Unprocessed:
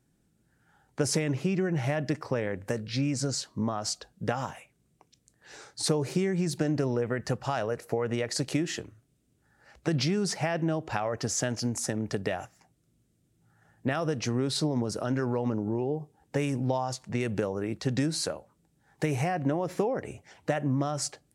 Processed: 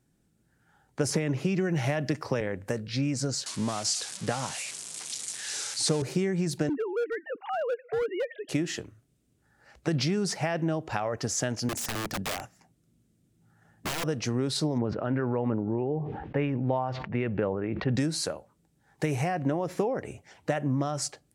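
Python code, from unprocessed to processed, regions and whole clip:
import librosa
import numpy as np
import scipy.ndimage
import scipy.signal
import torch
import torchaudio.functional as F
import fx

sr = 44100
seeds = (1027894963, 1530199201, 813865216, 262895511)

y = fx.chain(x, sr, fx.notch(hz=8000.0, q=16.0),
    fx.band_squash(depth_pct=70), at=(1.1, 2.41))
y = fx.chain(y, sr, fx.crossing_spikes(level_db=-22.0),
    fx.cheby1_bandpass(low_hz=110.0, high_hz=7400.0, order=2),
    fx.resample_bad(factor=2, down='none', up='filtered'), at=(3.46, 6.02))
y = fx.chain(y, sr, fx.sine_speech(),
    fx.highpass(hz=210.0, slope=12),
    fx.overload_stage(gain_db=25.0), at=(6.69, 8.49))
y = fx.chain(y, sr, fx.peak_eq(hz=210.0, db=5.0, octaves=1.0),
    fx.overflow_wrap(gain_db=26.0), at=(11.69, 14.04))
y = fx.chain(y, sr, fx.lowpass(hz=2700.0, slope=24),
    fx.sustainer(db_per_s=39.0), at=(14.78, 17.96))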